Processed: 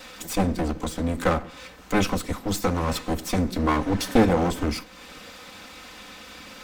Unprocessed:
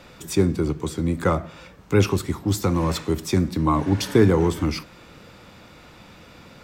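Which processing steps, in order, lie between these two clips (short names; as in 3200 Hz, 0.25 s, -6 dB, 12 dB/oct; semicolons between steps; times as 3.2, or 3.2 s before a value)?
minimum comb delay 3.9 ms; mismatched tape noise reduction encoder only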